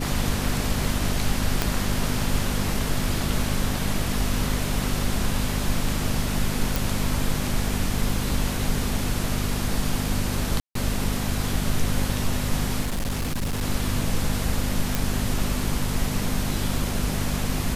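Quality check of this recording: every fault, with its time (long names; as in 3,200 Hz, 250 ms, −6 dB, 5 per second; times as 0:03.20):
mains hum 50 Hz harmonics 5 −29 dBFS
0:01.62: click −6 dBFS
0:06.76: click
0:10.60–0:10.75: drop-out 153 ms
0:12.81–0:13.63: clipping −22.5 dBFS
0:14.95: click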